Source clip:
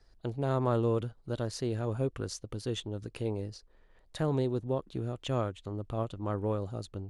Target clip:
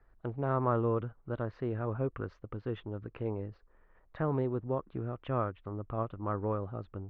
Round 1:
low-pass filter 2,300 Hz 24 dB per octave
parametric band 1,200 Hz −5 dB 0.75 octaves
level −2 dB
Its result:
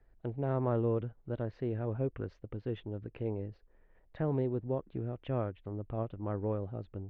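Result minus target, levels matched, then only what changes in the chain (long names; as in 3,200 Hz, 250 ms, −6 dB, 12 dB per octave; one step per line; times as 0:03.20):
1,000 Hz band −6.0 dB
change: parametric band 1,200 Hz +6.5 dB 0.75 octaves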